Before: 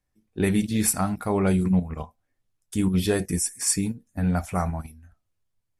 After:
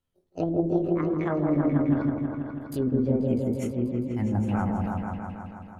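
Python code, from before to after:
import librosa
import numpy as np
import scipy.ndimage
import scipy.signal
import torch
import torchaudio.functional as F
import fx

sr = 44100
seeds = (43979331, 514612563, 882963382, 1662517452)

y = fx.pitch_glide(x, sr, semitones=10.0, runs='ending unshifted')
y = fx.env_lowpass_down(y, sr, base_hz=410.0, full_db=-19.0)
y = fx.echo_opening(y, sr, ms=162, hz=750, octaves=1, feedback_pct=70, wet_db=0)
y = y * 10.0 ** (-2.5 / 20.0)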